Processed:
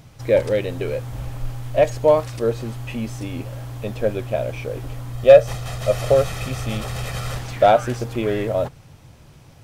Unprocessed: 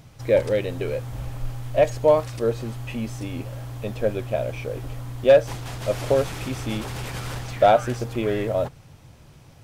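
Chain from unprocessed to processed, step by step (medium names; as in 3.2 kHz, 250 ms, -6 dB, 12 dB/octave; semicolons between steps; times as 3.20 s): 5.13–7.37 s: comb 1.6 ms, depth 58%; trim +2 dB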